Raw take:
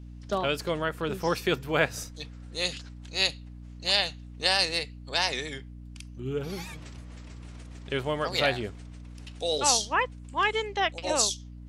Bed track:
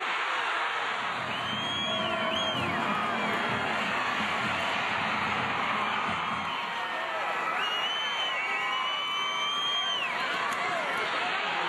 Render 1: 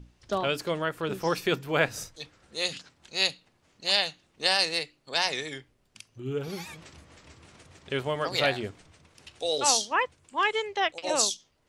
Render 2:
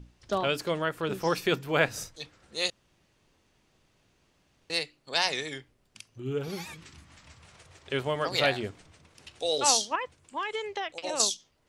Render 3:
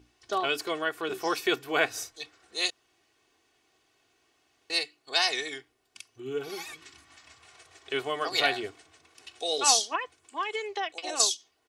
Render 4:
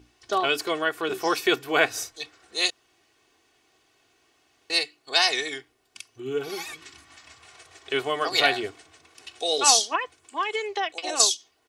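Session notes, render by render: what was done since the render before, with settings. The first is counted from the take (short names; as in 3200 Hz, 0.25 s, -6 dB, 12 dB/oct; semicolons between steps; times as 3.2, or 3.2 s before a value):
notches 60/120/180/240/300 Hz
2.7–4.7 room tone; 6.73–7.92 bell 730 Hz -> 180 Hz -13.5 dB; 9.95–11.2 compressor, threshold -28 dBFS
HPF 470 Hz 6 dB/oct; comb 2.7 ms, depth 69%
gain +4.5 dB; limiter -3 dBFS, peak gain reduction 1.5 dB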